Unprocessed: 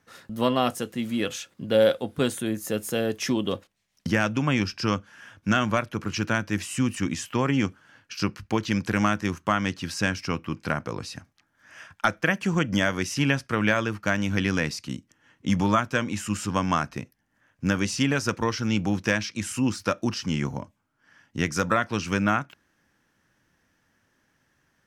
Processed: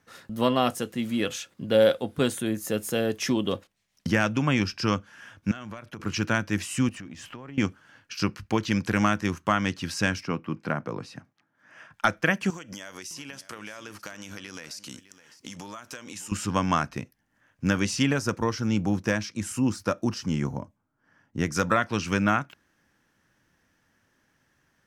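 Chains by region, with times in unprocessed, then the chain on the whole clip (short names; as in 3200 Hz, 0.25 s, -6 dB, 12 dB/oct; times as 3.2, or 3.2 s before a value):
5.51–6 expander -44 dBFS + compressor 12:1, threshold -34 dBFS
6.89–7.58 G.711 law mismatch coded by mu + LPF 2500 Hz 6 dB/oct + compressor 12:1, threshold -37 dBFS
10.23–11.94 HPF 120 Hz 24 dB/oct + high shelf 2800 Hz -12 dB
12.5–16.32 tone controls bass -11 dB, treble +11 dB + compressor 16:1, threshold -35 dBFS + echo 0.608 s -16 dB
18.13–21.55 bell 2900 Hz -6.5 dB 1.8 oct + mismatched tape noise reduction decoder only
whole clip: dry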